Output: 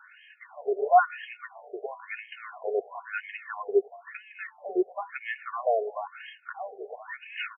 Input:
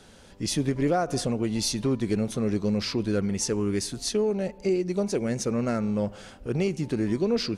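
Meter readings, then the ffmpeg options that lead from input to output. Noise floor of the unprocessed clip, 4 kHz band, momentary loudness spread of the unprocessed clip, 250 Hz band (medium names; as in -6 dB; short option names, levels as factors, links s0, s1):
-50 dBFS, under -10 dB, 3 LU, -15.5 dB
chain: -af "aecho=1:1:2.8:0.67,afftfilt=real='re*between(b*sr/1024,540*pow(2300/540,0.5+0.5*sin(2*PI*0.99*pts/sr))/1.41,540*pow(2300/540,0.5+0.5*sin(2*PI*0.99*pts/sr))*1.41)':imag='im*between(b*sr/1024,540*pow(2300/540,0.5+0.5*sin(2*PI*0.99*pts/sr))/1.41,540*pow(2300/540,0.5+0.5*sin(2*PI*0.99*pts/sr))*1.41)':win_size=1024:overlap=0.75,volume=2.37"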